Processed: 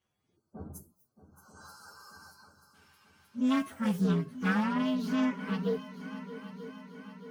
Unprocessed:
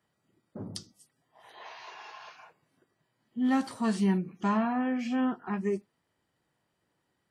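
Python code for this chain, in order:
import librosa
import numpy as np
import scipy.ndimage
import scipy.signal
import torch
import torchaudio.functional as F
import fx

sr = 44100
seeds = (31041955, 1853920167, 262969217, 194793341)

p1 = fx.partial_stretch(x, sr, pct=127)
p2 = p1 + fx.echo_heads(p1, sr, ms=312, heads='second and third', feedback_pct=63, wet_db=-15, dry=0)
p3 = fx.spec_box(p2, sr, start_s=0.37, length_s=2.38, low_hz=1600.0, high_hz=4000.0, gain_db=-27)
y = fx.doppler_dist(p3, sr, depth_ms=0.19)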